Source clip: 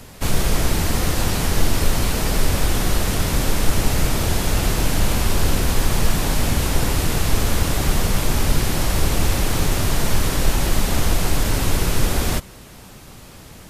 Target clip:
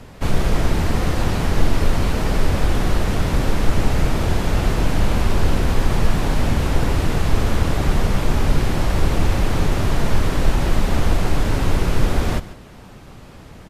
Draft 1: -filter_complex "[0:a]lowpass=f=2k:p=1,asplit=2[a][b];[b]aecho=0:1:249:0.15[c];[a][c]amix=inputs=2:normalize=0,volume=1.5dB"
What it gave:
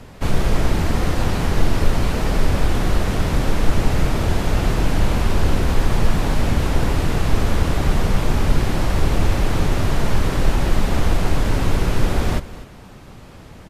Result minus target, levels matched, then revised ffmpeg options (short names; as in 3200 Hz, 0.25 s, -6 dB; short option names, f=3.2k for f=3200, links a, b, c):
echo 0.104 s late
-filter_complex "[0:a]lowpass=f=2k:p=1,asplit=2[a][b];[b]aecho=0:1:145:0.15[c];[a][c]amix=inputs=2:normalize=0,volume=1.5dB"